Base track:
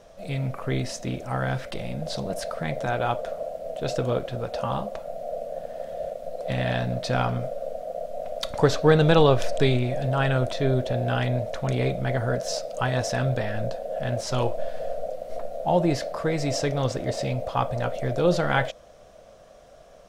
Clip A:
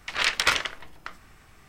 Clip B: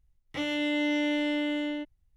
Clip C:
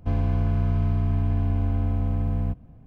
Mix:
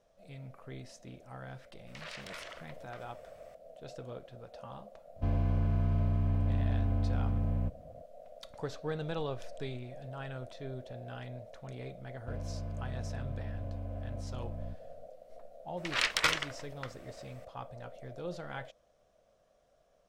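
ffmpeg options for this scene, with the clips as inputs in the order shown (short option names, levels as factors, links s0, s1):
-filter_complex "[1:a]asplit=2[s0][s1];[3:a]asplit=2[s2][s3];[0:a]volume=0.112[s4];[s0]acompressor=threshold=0.0224:ratio=4:attack=0.43:release=62:knee=1:detection=peak,atrim=end=1.68,asetpts=PTS-STARTPTS,volume=0.355,afade=t=in:d=0.004:c=hsin,afade=t=out:st=1.676:d=0.004:c=hsin,adelay=1870[s5];[s2]atrim=end=2.86,asetpts=PTS-STARTPTS,volume=0.473,afade=t=in:d=0.004:c=hsin,afade=t=out:st=2.856:d=0.004:c=hsin,adelay=5160[s6];[s3]atrim=end=2.86,asetpts=PTS-STARTPTS,volume=0.15,afade=t=in:d=0.004:c=hsin,afade=t=out:st=2.856:d=0.004:c=hsin,adelay=12210[s7];[s1]atrim=end=1.68,asetpts=PTS-STARTPTS,volume=0.501,afade=t=in:d=0.004:c=hsin,afade=t=out:st=1.676:d=0.004:c=hsin,adelay=15770[s8];[s4][s5][s6][s7][s8]amix=inputs=5:normalize=0"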